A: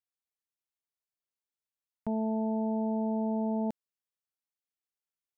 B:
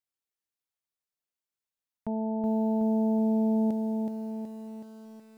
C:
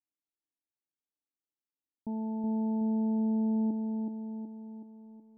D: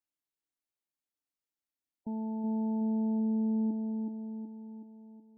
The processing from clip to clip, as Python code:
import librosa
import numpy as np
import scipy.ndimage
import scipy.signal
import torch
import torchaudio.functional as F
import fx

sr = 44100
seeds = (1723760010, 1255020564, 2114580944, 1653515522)

y1 = fx.echo_crushed(x, sr, ms=373, feedback_pct=55, bits=10, wet_db=-4)
y2 = fx.formant_cascade(y1, sr, vowel='u')
y2 = F.gain(torch.from_numpy(y2), 5.5).numpy()
y3 = fx.spec_gate(y2, sr, threshold_db=-25, keep='strong')
y3 = F.gain(torch.from_numpy(y3), -1.0).numpy()